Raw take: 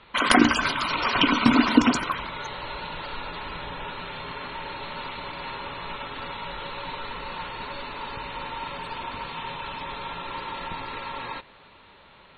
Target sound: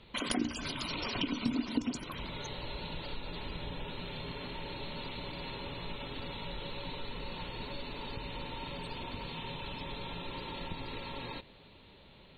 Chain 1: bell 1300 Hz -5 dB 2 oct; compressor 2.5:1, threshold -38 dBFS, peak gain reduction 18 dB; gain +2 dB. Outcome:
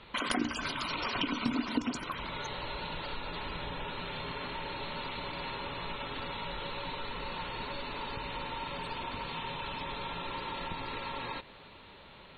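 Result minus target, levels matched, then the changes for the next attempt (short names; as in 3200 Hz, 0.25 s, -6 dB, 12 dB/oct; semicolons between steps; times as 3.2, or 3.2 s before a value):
1000 Hz band +4.0 dB
change: bell 1300 Hz -16 dB 2 oct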